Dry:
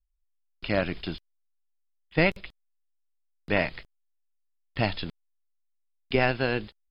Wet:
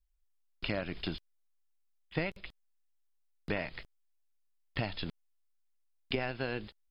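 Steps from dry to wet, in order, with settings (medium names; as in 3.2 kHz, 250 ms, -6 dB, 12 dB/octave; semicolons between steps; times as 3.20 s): compression 6:1, threshold -32 dBFS, peak gain reduction 15 dB; trim +1 dB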